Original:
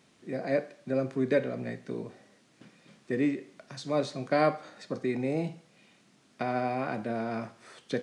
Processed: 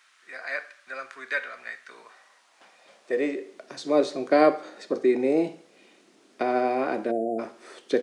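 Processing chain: high-pass sweep 1.4 kHz -> 350 Hz, 1.89–3.71 s; spectral selection erased 7.11–7.39 s, 770–6800 Hz; feedback delay 67 ms, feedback 34%, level -23.5 dB; trim +3.5 dB

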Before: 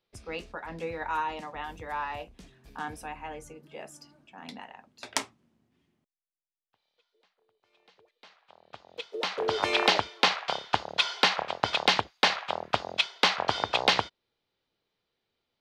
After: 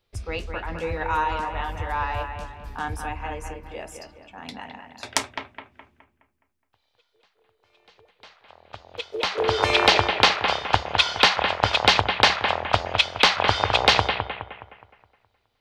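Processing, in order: resonant low shelf 120 Hz +10 dB, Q 1.5; bucket-brigade echo 209 ms, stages 4096, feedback 42%, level -6.5 dB; trim +6 dB

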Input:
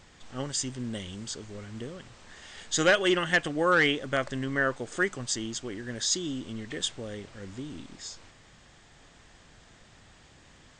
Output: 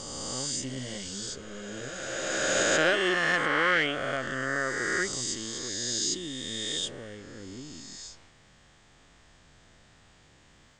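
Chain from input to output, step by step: reverse spectral sustain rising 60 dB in 2.81 s; 0.61–2.63 s: doubling 15 ms -2 dB; trim -6.5 dB

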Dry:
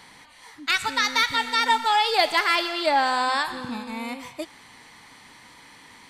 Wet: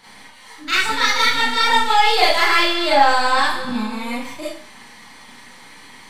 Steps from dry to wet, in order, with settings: partial rectifier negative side -3 dB; Schroeder reverb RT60 0.42 s, combs from 29 ms, DRR -9 dB; trim -2 dB

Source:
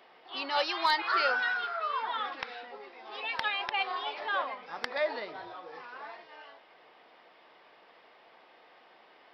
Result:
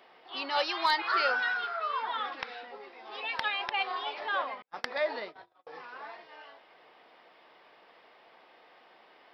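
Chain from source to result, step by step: 4.62–5.67 s: gate -40 dBFS, range -44 dB

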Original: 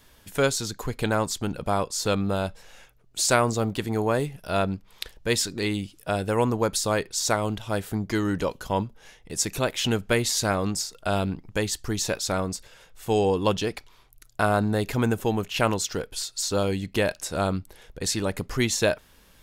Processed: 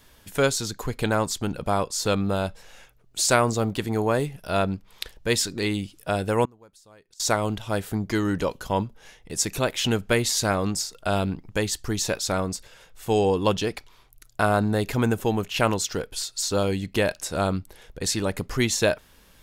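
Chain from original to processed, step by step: 6.45–7.20 s: inverted gate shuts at -27 dBFS, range -29 dB; trim +1 dB

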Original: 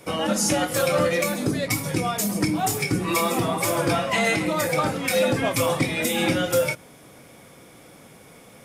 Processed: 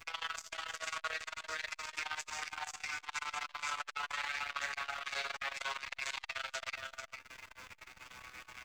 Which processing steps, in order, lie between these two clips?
vocoder on a note that slides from E3, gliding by -5 st; high-pass 1.2 kHz 24 dB/octave; peak limiter -28 dBFS, peak gain reduction 9.5 dB; compression 3:1, threshold -50 dBFS, peak gain reduction 12 dB; added noise pink -74 dBFS; chorus voices 4, 0.26 Hz, delay 13 ms, depth 3.3 ms; multi-tap echo 129/307/354/450 ms -18.5/-13.5/-19.5/-6.5 dB; reverberation, pre-delay 5 ms, DRR 10.5 dB; transformer saturation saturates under 2.6 kHz; trim +16.5 dB

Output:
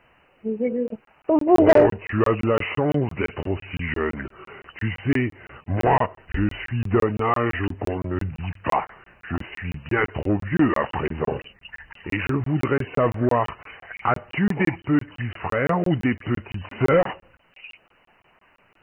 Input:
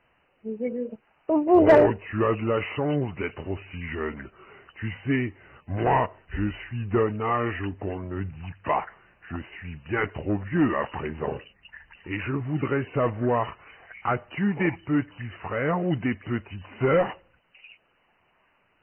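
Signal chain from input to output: in parallel at +0.5 dB: compression, threshold -31 dBFS, peak gain reduction 17.5 dB; on the sum: crackling interface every 0.17 s, samples 1024, zero, from 0.88 s; trim +1.5 dB

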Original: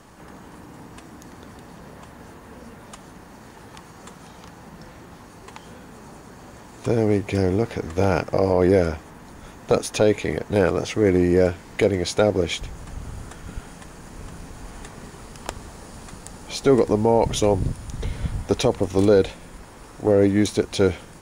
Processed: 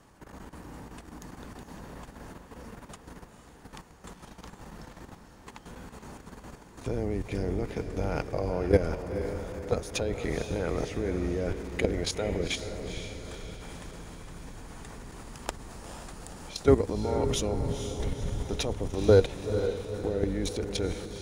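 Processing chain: octave divider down 2 oct, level -2 dB; level held to a coarse grid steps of 14 dB; echo that smears into a reverb 478 ms, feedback 51%, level -8 dB; trim -2 dB

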